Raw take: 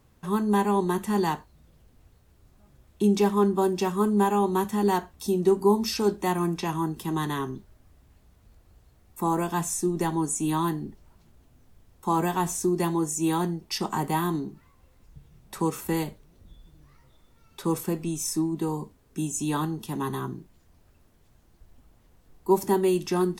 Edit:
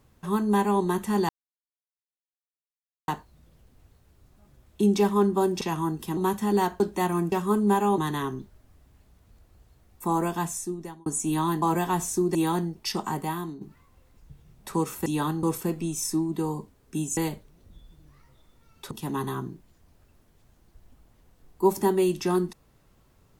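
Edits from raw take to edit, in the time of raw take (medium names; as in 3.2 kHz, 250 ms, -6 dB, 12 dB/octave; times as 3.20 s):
1.29 s: insert silence 1.79 s
3.82–4.48 s: swap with 6.58–7.14 s
5.11–6.06 s: delete
9.46–10.22 s: fade out
10.78–12.09 s: delete
12.82–13.21 s: delete
13.77–14.47 s: fade out linear, to -11 dB
15.92–17.66 s: swap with 19.40–19.77 s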